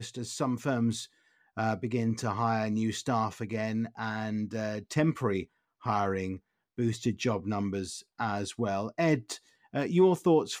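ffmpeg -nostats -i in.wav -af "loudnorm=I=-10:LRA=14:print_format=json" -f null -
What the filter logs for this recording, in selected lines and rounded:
"input_i" : "-30.2",
"input_tp" : "-13.6",
"input_lra" : "3.9",
"input_thresh" : "-40.6",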